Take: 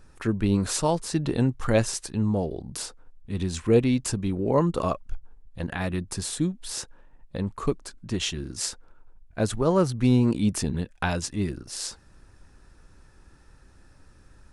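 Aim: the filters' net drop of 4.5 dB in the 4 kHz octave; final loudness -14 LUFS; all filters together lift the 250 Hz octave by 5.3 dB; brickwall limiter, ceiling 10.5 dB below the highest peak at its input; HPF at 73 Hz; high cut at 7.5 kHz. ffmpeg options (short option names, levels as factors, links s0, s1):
-af "highpass=73,lowpass=7500,equalizer=f=250:t=o:g=6.5,equalizer=f=4000:t=o:g=-5.5,volume=4.47,alimiter=limit=0.794:level=0:latency=1"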